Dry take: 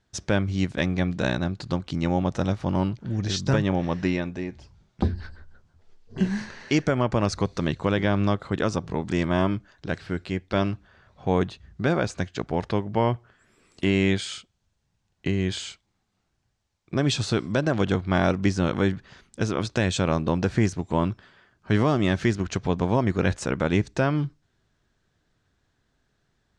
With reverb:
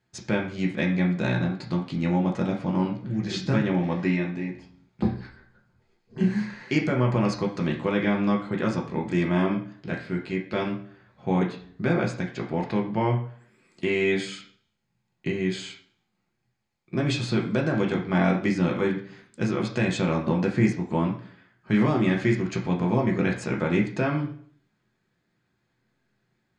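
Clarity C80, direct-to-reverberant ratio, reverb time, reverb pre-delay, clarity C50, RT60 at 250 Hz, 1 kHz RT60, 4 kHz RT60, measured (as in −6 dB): 13.0 dB, −1.5 dB, 0.55 s, 3 ms, 8.5 dB, 0.60 s, 0.50 s, 0.50 s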